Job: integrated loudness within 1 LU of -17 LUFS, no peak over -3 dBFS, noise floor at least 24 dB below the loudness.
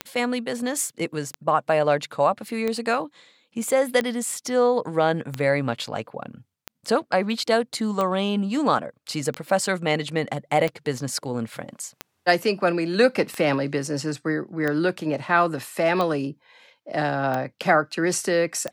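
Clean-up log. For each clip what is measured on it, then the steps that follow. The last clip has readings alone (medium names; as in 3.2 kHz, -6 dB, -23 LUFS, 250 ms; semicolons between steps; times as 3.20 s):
clicks found 15; loudness -24.0 LUFS; peak level -6.0 dBFS; loudness target -17.0 LUFS
-> de-click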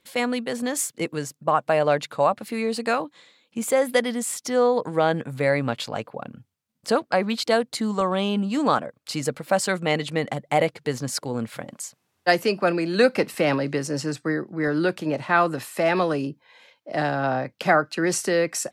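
clicks found 0; loudness -24.0 LUFS; peak level -6.0 dBFS; loudness target -17.0 LUFS
-> trim +7 dB; peak limiter -3 dBFS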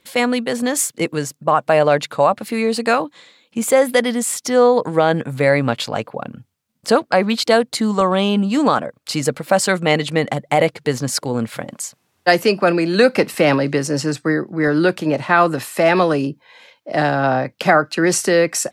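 loudness -17.5 LUFS; peak level -3.0 dBFS; noise floor -66 dBFS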